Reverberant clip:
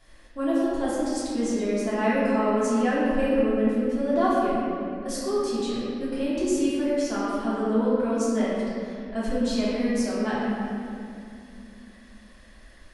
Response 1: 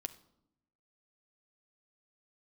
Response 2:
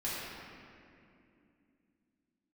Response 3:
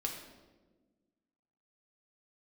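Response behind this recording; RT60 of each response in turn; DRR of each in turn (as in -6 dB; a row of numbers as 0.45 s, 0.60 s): 2; 0.80 s, 2.6 s, 1.3 s; 8.0 dB, -10.0 dB, 0.0 dB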